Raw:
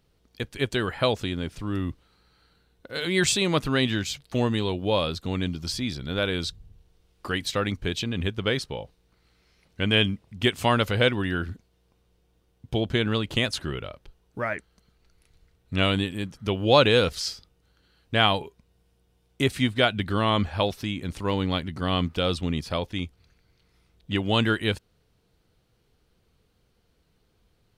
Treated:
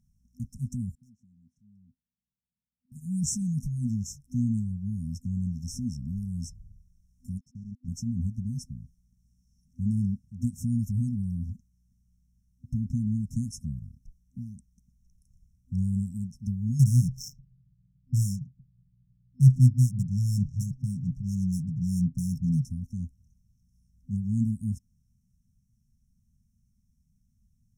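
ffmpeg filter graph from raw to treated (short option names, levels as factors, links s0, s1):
-filter_complex "[0:a]asettb=1/sr,asplit=3[s0][s1][s2];[s0]atrim=end=0.954[s3];[s1]atrim=start=0.95:end=2.92,asetpts=PTS-STARTPTS,afade=t=in:d=0.004:c=qsin,afade=t=out:st=1.966:d=0.004:c=qsin,asplit=3[s4][s5][s6];[s4]bandpass=f=530:t=q:w=8,volume=1[s7];[s5]bandpass=f=1840:t=q:w=8,volume=0.501[s8];[s6]bandpass=f=2480:t=q:w=8,volume=0.355[s9];[s7][s8][s9]amix=inputs=3:normalize=0,equalizer=f=2300:w=1.4:g=-13,asoftclip=type=hard:threshold=0.0596[s10];[s2]atrim=start=2.916[s11];[s3][s10]acrossfade=d=0.004:c1=hsin:c2=qsin[s12];[s12][s11]acrossfade=d=0.004:c1=qsin:c2=hsin,asettb=1/sr,asplit=3[s13][s14][s15];[s13]atrim=end=7.384[s16];[s14]atrim=start=7.38:end=7.88,asetpts=PTS-STARTPTS,afade=t=in:d=0.004:c=qsin,afade=t=out:st=0.496:d=0.004:c=qsin,aeval=exprs='val(0)*gte(abs(val(0)),0.0355)':c=same,lowpass=1500,lowshelf=f=360:g=-10.5[s17];[s15]atrim=start=7.876[s18];[s16][s17]acrossfade=d=0.004:c1=hsin:c2=qsin[s19];[s19][s18]acrossfade=d=0.004:c1=qsin:c2=hsin,asettb=1/sr,asplit=3[s20][s21][s22];[s20]atrim=end=16.794[s23];[s21]atrim=start=16.79:end=22.65,asetpts=PTS-STARTPTS,afade=t=in:d=0.004:c=qsin,afade=t=out:st=5.856:d=0.004:c=qsin,equalizer=f=130:w=4.9:g=11.5,aecho=1:1:6.7:0.81,atrim=end_sample=258426,adynamicsmooth=sensitivity=5:basefreq=780[s24];[s22]atrim=start=22.646[s25];[s23][s24]acrossfade=d=0.004:c1=hsin:c2=qsin[s26];[s26][s25]acrossfade=d=0.004:c1=qsin:c2=hsin,afftfilt=real='re*(1-between(b*sr/4096,250,5300))':imag='im*(1-between(b*sr/4096,250,5300))':win_size=4096:overlap=0.75,highshelf=f=6800:g=-7.5"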